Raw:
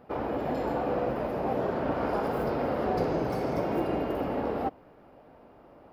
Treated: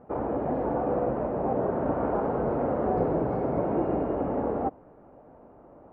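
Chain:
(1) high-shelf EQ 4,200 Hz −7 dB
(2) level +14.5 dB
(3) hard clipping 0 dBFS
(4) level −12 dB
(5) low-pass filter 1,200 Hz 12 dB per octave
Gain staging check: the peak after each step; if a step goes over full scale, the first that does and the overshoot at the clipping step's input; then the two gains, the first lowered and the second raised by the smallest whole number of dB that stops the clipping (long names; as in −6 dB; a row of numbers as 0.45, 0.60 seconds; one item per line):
−16.0, −1.5, −1.5, −13.5, −14.0 dBFS
no step passes full scale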